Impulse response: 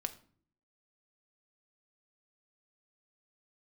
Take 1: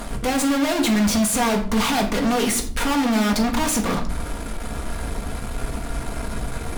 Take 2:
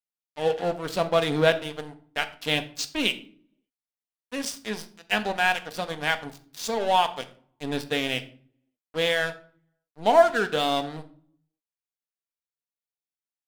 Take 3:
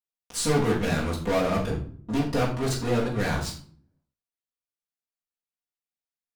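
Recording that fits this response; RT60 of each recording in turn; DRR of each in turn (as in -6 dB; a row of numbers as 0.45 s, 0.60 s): 2; no single decay rate, no single decay rate, no single decay rate; 1.5 dB, 8.0 dB, -7.0 dB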